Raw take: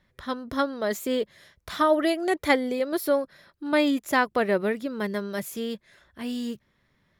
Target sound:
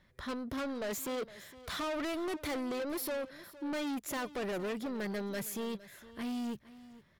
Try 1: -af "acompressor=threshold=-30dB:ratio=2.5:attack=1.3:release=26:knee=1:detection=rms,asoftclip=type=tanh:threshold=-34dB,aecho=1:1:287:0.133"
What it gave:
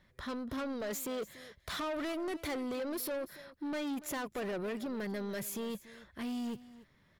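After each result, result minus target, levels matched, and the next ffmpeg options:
echo 174 ms early; downward compressor: peak gain reduction +5 dB
-af "acompressor=threshold=-30dB:ratio=2.5:attack=1.3:release=26:knee=1:detection=rms,asoftclip=type=tanh:threshold=-34dB,aecho=1:1:461:0.133"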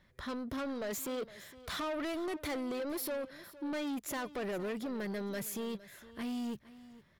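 downward compressor: peak gain reduction +5 dB
-af "acompressor=threshold=-22dB:ratio=2.5:attack=1.3:release=26:knee=1:detection=rms,asoftclip=type=tanh:threshold=-34dB,aecho=1:1:461:0.133"

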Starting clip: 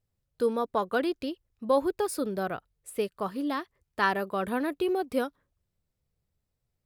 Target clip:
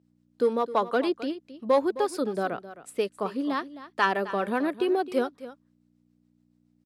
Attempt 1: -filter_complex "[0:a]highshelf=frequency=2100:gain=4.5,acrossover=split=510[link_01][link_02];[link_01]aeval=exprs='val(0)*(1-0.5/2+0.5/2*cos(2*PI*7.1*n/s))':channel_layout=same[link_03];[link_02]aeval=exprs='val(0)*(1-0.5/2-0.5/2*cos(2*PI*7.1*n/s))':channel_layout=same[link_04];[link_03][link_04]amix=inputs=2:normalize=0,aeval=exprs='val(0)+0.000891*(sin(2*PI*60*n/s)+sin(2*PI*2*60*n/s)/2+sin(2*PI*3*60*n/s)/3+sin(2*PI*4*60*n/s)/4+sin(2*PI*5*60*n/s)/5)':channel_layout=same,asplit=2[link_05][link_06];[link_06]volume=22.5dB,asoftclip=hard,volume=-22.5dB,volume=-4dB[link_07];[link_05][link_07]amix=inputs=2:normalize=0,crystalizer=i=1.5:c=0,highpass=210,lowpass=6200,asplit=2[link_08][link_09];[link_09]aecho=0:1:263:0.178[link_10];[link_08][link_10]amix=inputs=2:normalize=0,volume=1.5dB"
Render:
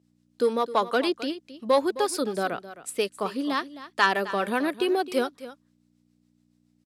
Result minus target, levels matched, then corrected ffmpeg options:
4,000 Hz band +6.0 dB
-filter_complex "[0:a]highshelf=frequency=2100:gain=-5.5,acrossover=split=510[link_01][link_02];[link_01]aeval=exprs='val(0)*(1-0.5/2+0.5/2*cos(2*PI*7.1*n/s))':channel_layout=same[link_03];[link_02]aeval=exprs='val(0)*(1-0.5/2-0.5/2*cos(2*PI*7.1*n/s))':channel_layout=same[link_04];[link_03][link_04]amix=inputs=2:normalize=0,aeval=exprs='val(0)+0.000891*(sin(2*PI*60*n/s)+sin(2*PI*2*60*n/s)/2+sin(2*PI*3*60*n/s)/3+sin(2*PI*4*60*n/s)/4+sin(2*PI*5*60*n/s)/5)':channel_layout=same,asplit=2[link_05][link_06];[link_06]volume=22.5dB,asoftclip=hard,volume=-22.5dB,volume=-4dB[link_07];[link_05][link_07]amix=inputs=2:normalize=0,crystalizer=i=1.5:c=0,highpass=210,lowpass=6200,asplit=2[link_08][link_09];[link_09]aecho=0:1:263:0.178[link_10];[link_08][link_10]amix=inputs=2:normalize=0,volume=1.5dB"

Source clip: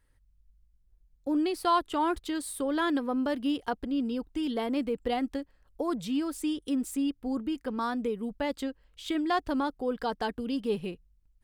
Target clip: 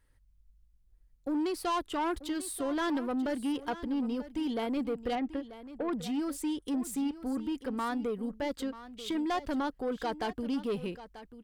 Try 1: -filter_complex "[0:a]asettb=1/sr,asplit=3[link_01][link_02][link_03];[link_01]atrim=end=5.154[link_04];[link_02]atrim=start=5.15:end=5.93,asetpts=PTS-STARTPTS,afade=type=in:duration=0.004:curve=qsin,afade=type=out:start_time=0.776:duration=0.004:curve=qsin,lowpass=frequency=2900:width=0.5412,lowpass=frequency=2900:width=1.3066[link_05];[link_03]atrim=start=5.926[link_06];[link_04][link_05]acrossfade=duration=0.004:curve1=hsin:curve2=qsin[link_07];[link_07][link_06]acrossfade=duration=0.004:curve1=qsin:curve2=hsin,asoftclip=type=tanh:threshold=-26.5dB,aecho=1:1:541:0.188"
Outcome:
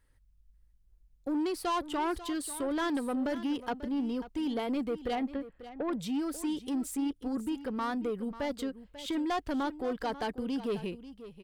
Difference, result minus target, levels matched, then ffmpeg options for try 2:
echo 397 ms early
-filter_complex "[0:a]asettb=1/sr,asplit=3[link_01][link_02][link_03];[link_01]atrim=end=5.154[link_04];[link_02]atrim=start=5.15:end=5.93,asetpts=PTS-STARTPTS,afade=type=in:duration=0.004:curve=qsin,afade=type=out:start_time=0.776:duration=0.004:curve=qsin,lowpass=frequency=2900:width=0.5412,lowpass=frequency=2900:width=1.3066[link_05];[link_03]atrim=start=5.926[link_06];[link_04][link_05]acrossfade=duration=0.004:curve1=hsin:curve2=qsin[link_07];[link_07][link_06]acrossfade=duration=0.004:curve1=qsin:curve2=hsin,asoftclip=type=tanh:threshold=-26.5dB,aecho=1:1:938:0.188"

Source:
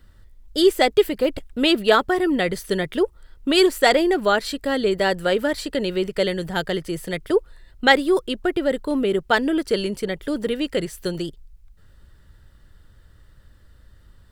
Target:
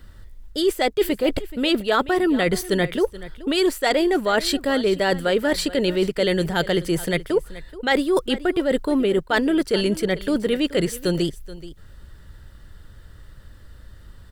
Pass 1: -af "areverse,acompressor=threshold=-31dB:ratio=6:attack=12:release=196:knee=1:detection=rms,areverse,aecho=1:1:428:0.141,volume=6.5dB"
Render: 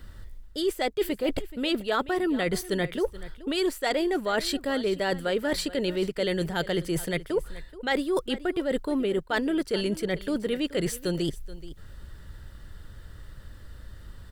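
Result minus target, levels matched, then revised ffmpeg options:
downward compressor: peak gain reduction +6.5 dB
-af "areverse,acompressor=threshold=-23dB:ratio=6:attack=12:release=196:knee=1:detection=rms,areverse,aecho=1:1:428:0.141,volume=6.5dB"

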